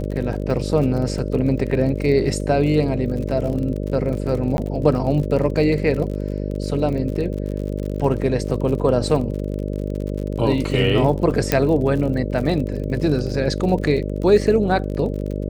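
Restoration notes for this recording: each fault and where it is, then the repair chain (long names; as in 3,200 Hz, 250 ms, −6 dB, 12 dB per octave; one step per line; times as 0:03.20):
mains buzz 50 Hz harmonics 12 −25 dBFS
surface crackle 48 per second −28 dBFS
0:04.57–0:04.58: drop-out 11 ms
0:11.52: click −2 dBFS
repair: click removal
hum removal 50 Hz, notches 12
repair the gap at 0:04.57, 11 ms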